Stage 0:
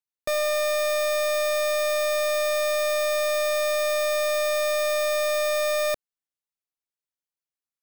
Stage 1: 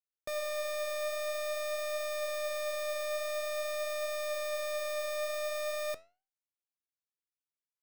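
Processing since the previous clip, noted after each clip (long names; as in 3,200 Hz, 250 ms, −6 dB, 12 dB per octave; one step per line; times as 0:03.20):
flanger 0.48 Hz, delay 8.9 ms, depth 7.8 ms, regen +82%
level −7 dB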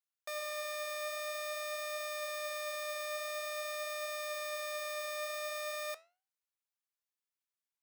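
Chebyshev high-pass filter 910 Hz, order 2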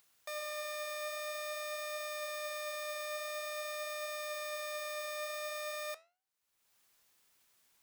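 upward compression, threshold −51 dBFS
level −1 dB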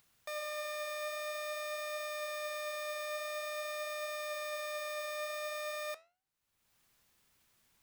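bass and treble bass +10 dB, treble −3 dB
level +1 dB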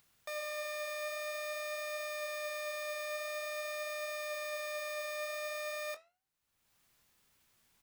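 double-tracking delay 22 ms −12 dB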